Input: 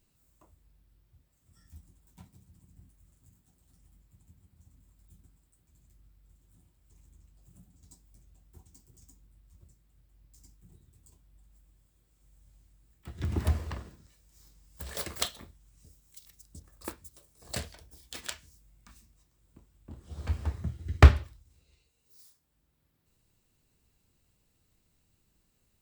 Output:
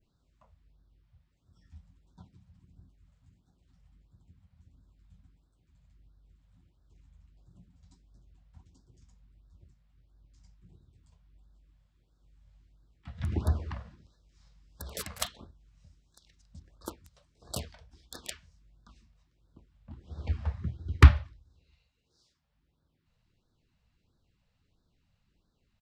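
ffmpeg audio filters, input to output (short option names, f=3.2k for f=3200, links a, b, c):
-filter_complex "[0:a]adynamicequalizer=threshold=0.00141:dfrequency=3500:dqfactor=0.89:tfrequency=3500:tqfactor=0.89:attack=5:release=100:ratio=0.375:range=3:mode=cutabove:tftype=bell,acrossover=split=5400[a][b];[b]acrusher=bits=5:mix=0:aa=0.000001[c];[a][c]amix=inputs=2:normalize=0,aresample=32000,aresample=44100,afftfilt=real='re*(1-between(b*sr/1024,300*pow(2500/300,0.5+0.5*sin(2*PI*1.5*pts/sr))/1.41,300*pow(2500/300,0.5+0.5*sin(2*PI*1.5*pts/sr))*1.41))':imag='im*(1-between(b*sr/1024,300*pow(2500/300,0.5+0.5*sin(2*PI*1.5*pts/sr))/1.41,300*pow(2500/300,0.5+0.5*sin(2*PI*1.5*pts/sr))*1.41))':win_size=1024:overlap=0.75"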